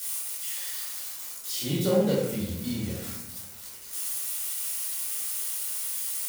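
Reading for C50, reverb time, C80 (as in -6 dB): 1.0 dB, 1.0 s, 4.5 dB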